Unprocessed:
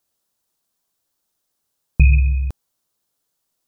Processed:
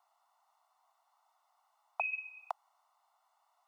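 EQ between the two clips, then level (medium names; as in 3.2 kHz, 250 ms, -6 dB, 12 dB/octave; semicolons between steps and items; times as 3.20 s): Savitzky-Golay filter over 65 samples; steep high-pass 700 Hz 72 dB/octave; +17.5 dB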